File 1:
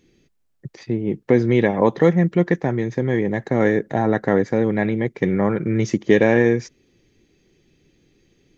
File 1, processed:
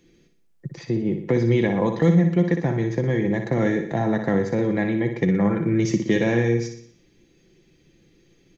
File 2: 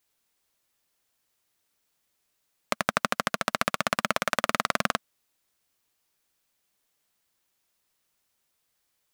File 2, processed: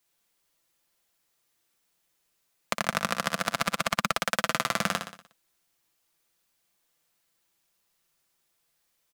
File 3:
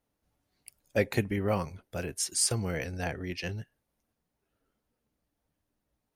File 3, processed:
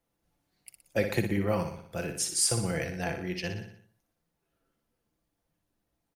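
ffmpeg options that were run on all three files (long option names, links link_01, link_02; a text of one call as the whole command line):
ffmpeg -i in.wav -filter_complex "[0:a]aecho=1:1:5.9:0.36,acrossover=split=220|3000[link_01][link_02][link_03];[link_02]acompressor=threshold=-25dB:ratio=2.5[link_04];[link_01][link_04][link_03]amix=inputs=3:normalize=0,asplit=2[link_05][link_06];[link_06]aecho=0:1:60|120|180|240|300|360:0.422|0.219|0.114|0.0593|0.0308|0.016[link_07];[link_05][link_07]amix=inputs=2:normalize=0" out.wav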